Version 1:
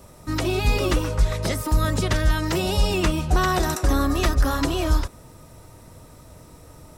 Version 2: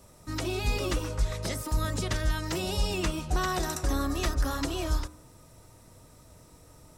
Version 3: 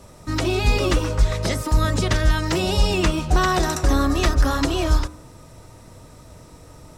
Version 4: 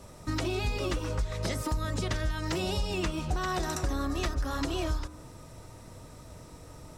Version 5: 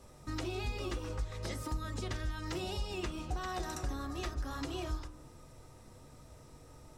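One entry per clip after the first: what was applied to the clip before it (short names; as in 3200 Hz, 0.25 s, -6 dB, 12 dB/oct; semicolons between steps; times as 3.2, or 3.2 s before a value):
bell 6900 Hz +4 dB 1.5 oct; de-hum 76.65 Hz, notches 20; gain -8 dB
in parallel at -9.5 dB: short-mantissa float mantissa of 2-bit; on the sum: high shelf 9400 Hz -11.5 dB; gain +7.5 dB
compressor, threshold -24 dBFS, peak gain reduction 12.5 dB; gain -3.5 dB
reverb, pre-delay 4 ms, DRR 11 dB; gain -8 dB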